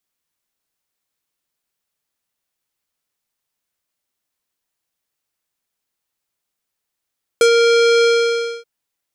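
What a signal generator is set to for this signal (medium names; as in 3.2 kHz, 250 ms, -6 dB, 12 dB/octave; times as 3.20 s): synth note square A#4 12 dB/octave, low-pass 5 kHz, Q 1.5, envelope 1 oct, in 0.08 s, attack 1.9 ms, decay 0.09 s, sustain -3 dB, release 0.60 s, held 0.63 s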